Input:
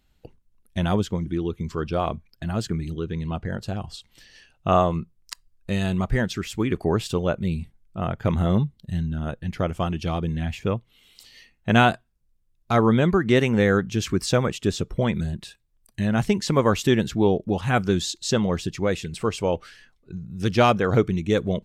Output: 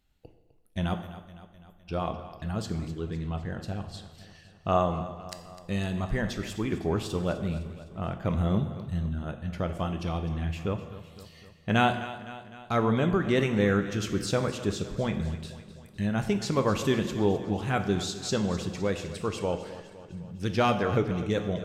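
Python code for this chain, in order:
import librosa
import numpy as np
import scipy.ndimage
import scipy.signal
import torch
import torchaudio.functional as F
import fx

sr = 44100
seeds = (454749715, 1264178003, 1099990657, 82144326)

y = fx.cheby2_bandstop(x, sr, low_hz=120.0, high_hz=5100.0, order=4, stop_db=60, at=(0.93, 1.87), fade=0.02)
y = fx.echo_feedback(y, sr, ms=255, feedback_pct=58, wet_db=-14.5)
y = fx.rev_plate(y, sr, seeds[0], rt60_s=1.1, hf_ratio=0.8, predelay_ms=0, drr_db=7.0)
y = y * librosa.db_to_amplitude(-6.5)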